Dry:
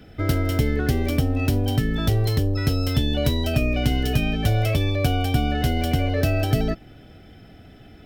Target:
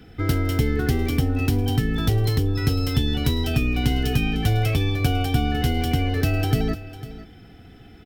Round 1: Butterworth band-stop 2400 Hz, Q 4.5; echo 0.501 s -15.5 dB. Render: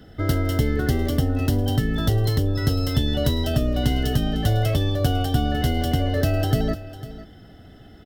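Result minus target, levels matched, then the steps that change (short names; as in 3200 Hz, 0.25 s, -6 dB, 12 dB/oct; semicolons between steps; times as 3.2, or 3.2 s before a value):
2000 Hz band -3.0 dB
change: Butterworth band-stop 600 Hz, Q 4.5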